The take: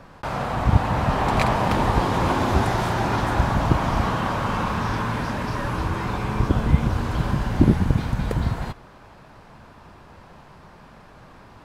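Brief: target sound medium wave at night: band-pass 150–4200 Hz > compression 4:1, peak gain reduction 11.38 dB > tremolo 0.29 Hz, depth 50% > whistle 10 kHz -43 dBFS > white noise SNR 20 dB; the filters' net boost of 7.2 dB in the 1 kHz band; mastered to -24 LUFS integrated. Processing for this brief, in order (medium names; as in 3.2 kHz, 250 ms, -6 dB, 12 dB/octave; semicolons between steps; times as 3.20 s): band-pass 150–4200 Hz; peaking EQ 1 kHz +8.5 dB; compression 4:1, threshold -24 dBFS; tremolo 0.29 Hz, depth 50%; whistle 10 kHz -43 dBFS; white noise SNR 20 dB; trim +6 dB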